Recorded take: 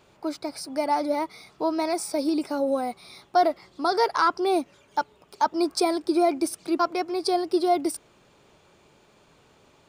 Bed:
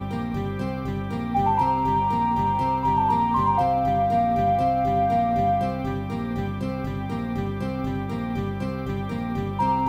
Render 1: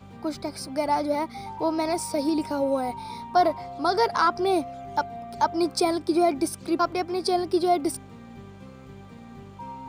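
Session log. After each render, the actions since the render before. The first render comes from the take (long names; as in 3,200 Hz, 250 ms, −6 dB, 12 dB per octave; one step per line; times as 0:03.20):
mix in bed −16.5 dB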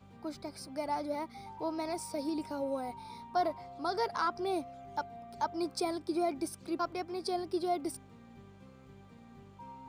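level −10.5 dB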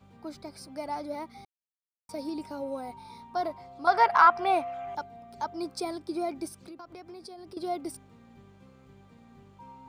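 0:01.45–0:02.09: silence
0:03.87–0:04.95: flat-topped bell 1,400 Hz +14 dB 2.6 octaves
0:06.48–0:07.57: downward compressor 16 to 1, threshold −41 dBFS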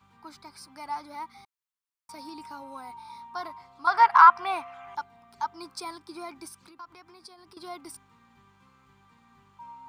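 low shelf with overshoot 780 Hz −8 dB, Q 3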